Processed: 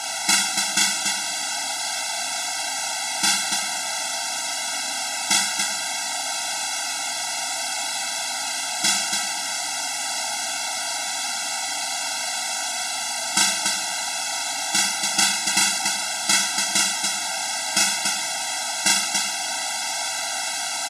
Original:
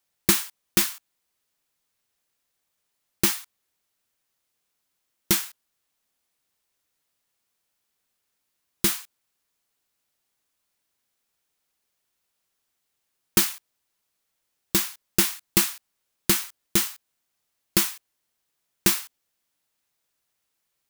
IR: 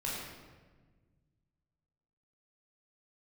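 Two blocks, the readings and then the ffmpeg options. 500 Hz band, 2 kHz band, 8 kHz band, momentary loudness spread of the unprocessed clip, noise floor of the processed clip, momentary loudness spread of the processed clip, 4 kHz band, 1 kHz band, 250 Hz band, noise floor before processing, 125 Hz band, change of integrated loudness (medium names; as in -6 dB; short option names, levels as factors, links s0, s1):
+3.0 dB, +11.5 dB, +10.0 dB, 10 LU, -28 dBFS, 6 LU, +11.5 dB, +15.0 dB, -5.0 dB, -78 dBFS, no reading, +2.0 dB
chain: -filter_complex "[0:a]aeval=exprs='val(0)+0.5*0.075*sgn(val(0))':c=same,highpass=480,equalizer=f=770:t=q:w=4:g=6,equalizer=f=1200:t=q:w=4:g=-4,equalizer=f=2400:t=q:w=4:g=-4,lowpass=f=8900:w=0.5412,lowpass=f=8900:w=1.3066,aecho=1:1:37.9|99.13|285.7:0.794|0.282|0.631,asplit=2[s0][s1];[1:a]atrim=start_sample=2205[s2];[s1][s2]afir=irnorm=-1:irlink=0,volume=0.224[s3];[s0][s3]amix=inputs=2:normalize=0,afftfilt=real='re*eq(mod(floor(b*sr/1024/320),2),0)':imag='im*eq(mod(floor(b*sr/1024/320),2),0)':win_size=1024:overlap=0.75,volume=1.78"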